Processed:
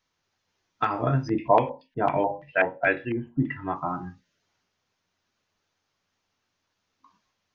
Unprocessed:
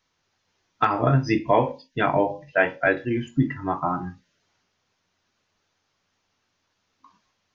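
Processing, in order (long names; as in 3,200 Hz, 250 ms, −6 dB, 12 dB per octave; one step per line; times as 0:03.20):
0:01.27–0:03.74: auto-filter low-pass square 5.8 Hz → 1.1 Hz 870–2,700 Hz
level −4.5 dB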